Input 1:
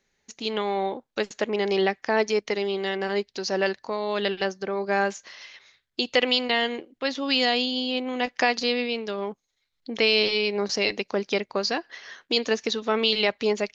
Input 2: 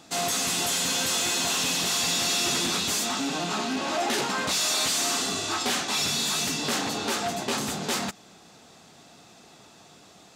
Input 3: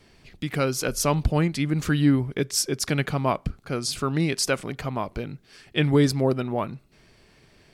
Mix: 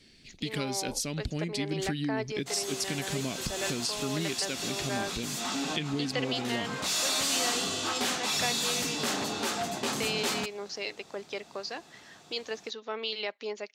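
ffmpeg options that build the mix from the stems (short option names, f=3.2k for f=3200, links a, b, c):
-filter_complex "[0:a]highpass=320,volume=-11dB[a];[1:a]adelay=2350,volume=-3.5dB[b];[2:a]equalizer=f=250:t=o:w=1:g=8,equalizer=f=1k:t=o:w=1:g=-11,equalizer=f=2k:t=o:w=1:g=5,equalizer=f=4k:t=o:w=1:g=11,equalizer=f=8k:t=o:w=1:g=7,acompressor=threshold=-21dB:ratio=12,volume=-8dB,asplit=2[c][d];[d]apad=whole_len=560134[e];[b][e]sidechaincompress=threshold=-40dB:ratio=6:attack=16:release=337[f];[a][f][c]amix=inputs=3:normalize=0"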